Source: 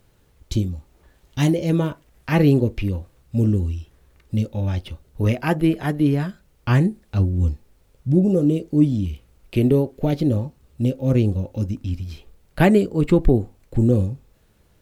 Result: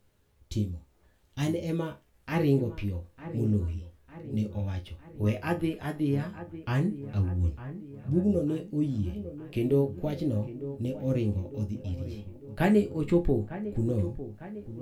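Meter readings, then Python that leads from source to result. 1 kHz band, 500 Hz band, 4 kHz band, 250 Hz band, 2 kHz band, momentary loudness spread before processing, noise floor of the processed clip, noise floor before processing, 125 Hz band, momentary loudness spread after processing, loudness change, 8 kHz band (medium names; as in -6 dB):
-8.5 dB, -7.5 dB, -9.5 dB, -9.0 dB, -9.0 dB, 14 LU, -65 dBFS, -59 dBFS, -9.5 dB, 14 LU, -9.0 dB, no reading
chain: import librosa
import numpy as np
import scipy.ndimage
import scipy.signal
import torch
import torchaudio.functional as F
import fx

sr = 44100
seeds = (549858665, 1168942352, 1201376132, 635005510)

y = fx.resonator_bank(x, sr, root=37, chord='major', decay_s=0.22)
y = fx.echo_wet_lowpass(y, sr, ms=902, feedback_pct=54, hz=2000.0, wet_db=-13)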